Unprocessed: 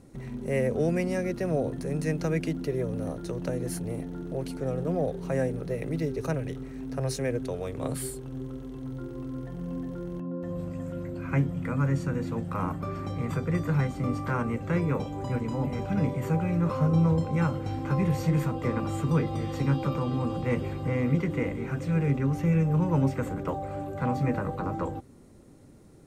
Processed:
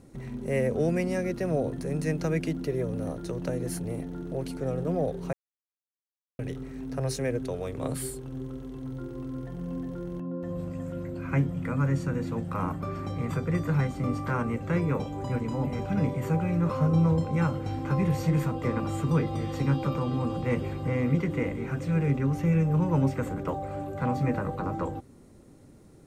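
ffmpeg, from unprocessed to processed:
ffmpeg -i in.wav -filter_complex "[0:a]asplit=3[link_01][link_02][link_03];[link_01]atrim=end=5.33,asetpts=PTS-STARTPTS,afade=type=out:start_time=5.326:duration=0.004:curve=hsin[link_04];[link_02]atrim=start=5.33:end=6.39,asetpts=PTS-STARTPTS,volume=0[link_05];[link_03]atrim=start=6.39,asetpts=PTS-STARTPTS,afade=type=in:duration=0.004:curve=hsin[link_06];[link_04][link_05][link_06]concat=n=3:v=0:a=1" out.wav

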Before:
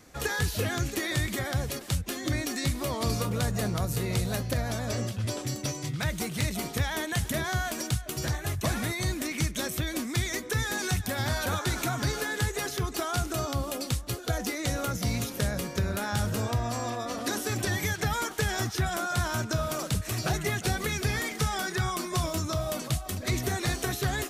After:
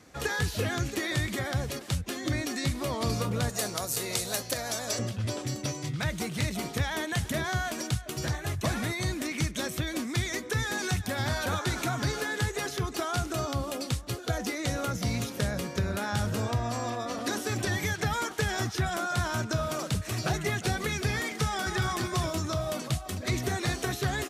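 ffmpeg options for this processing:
ffmpeg -i in.wav -filter_complex "[0:a]asettb=1/sr,asplit=3[link_01][link_02][link_03];[link_01]atrim=end=3.494[link_04];[link_02]atrim=start=3.49:end=4.99,asetpts=PTS-STARTPTS,afade=type=in:duration=0.004:curve=qsin,afade=type=out:start_time=1.496:duration=0.004:curve=qsin,bass=frequency=250:gain=-14,treble=frequency=4000:gain=11[link_05];[link_03]atrim=start=4.986[link_06];[link_04][link_05]acrossfade=duration=0.004:curve1=hsin:curve2=qsin[link_07];[link_07][link_06]acrossfade=duration=0.004:curve1=qsin:curve2=hsin,asplit=2[link_08][link_09];[link_09]afade=type=in:start_time=21.43:duration=0.01,afade=type=out:start_time=21.84:duration=0.01,aecho=0:1:230|460|690|920|1150:0.530884|0.238898|0.107504|0.0483768|0.0217696[link_10];[link_08][link_10]amix=inputs=2:normalize=0,highpass=65,highshelf=frequency=11000:gain=-10" out.wav

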